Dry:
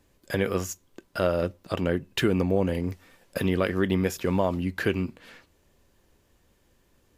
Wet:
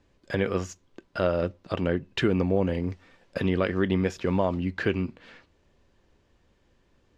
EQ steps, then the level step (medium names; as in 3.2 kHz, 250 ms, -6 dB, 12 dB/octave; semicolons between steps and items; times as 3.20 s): distance through air 140 m; treble shelf 5 kHz +4.5 dB; 0.0 dB